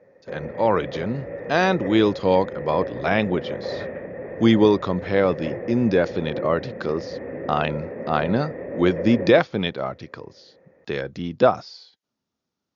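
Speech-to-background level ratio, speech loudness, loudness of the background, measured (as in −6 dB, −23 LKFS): 10.5 dB, −22.0 LKFS, −32.5 LKFS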